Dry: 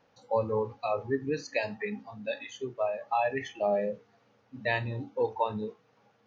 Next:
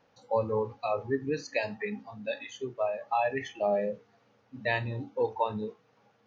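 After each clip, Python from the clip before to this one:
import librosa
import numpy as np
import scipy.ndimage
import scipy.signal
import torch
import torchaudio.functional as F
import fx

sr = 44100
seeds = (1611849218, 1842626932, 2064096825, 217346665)

y = x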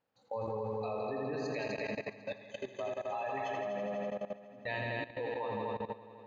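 y = fx.notch(x, sr, hz=5800.0, q=8.0)
y = fx.echo_heads(y, sr, ms=83, heads='all three', feedback_pct=71, wet_db=-7.5)
y = fx.level_steps(y, sr, step_db=16)
y = y * librosa.db_to_amplitude(-4.5)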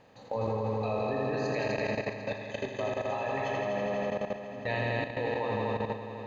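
y = fx.bin_compress(x, sr, power=0.6)
y = fx.low_shelf(y, sr, hz=110.0, db=8.5)
y = fx.doubler(y, sr, ms=36.0, db=-11.5)
y = y * librosa.db_to_amplitude(2.0)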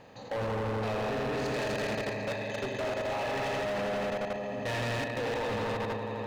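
y = np.clip(10.0 ** (35.5 / 20.0) * x, -1.0, 1.0) / 10.0 ** (35.5 / 20.0)
y = y * librosa.db_to_amplitude(5.5)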